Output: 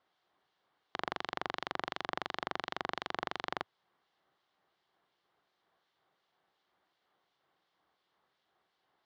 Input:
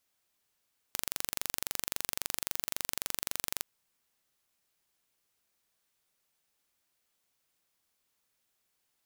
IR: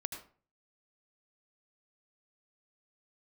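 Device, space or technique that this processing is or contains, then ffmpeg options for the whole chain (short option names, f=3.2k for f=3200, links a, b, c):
guitar amplifier with harmonic tremolo: -filter_complex "[0:a]acrossover=split=2200[a][b];[a]aeval=exprs='val(0)*(1-0.5/2+0.5/2*cos(2*PI*2.8*n/s))':c=same[c];[b]aeval=exprs='val(0)*(1-0.5/2-0.5/2*cos(2*PI*2.8*n/s))':c=same[d];[c][d]amix=inputs=2:normalize=0,asoftclip=type=tanh:threshold=-22.5dB,highpass=98,equalizer=f=100:t=q:w=4:g=-9,equalizer=f=240:t=q:w=4:g=-6,equalizer=f=360:t=q:w=4:g=4,equalizer=f=760:t=q:w=4:g=6,equalizer=f=1.1k:t=q:w=4:g=4,equalizer=f=2.5k:t=q:w=4:g=-10,lowpass=f=3.6k:w=0.5412,lowpass=f=3.6k:w=1.3066,volume=9.5dB"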